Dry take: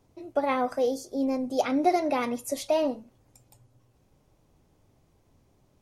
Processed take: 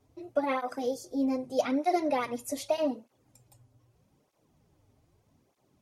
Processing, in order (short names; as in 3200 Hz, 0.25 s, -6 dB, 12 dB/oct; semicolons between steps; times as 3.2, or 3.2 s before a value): tape flanging out of phase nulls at 0.81 Hz, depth 6.2 ms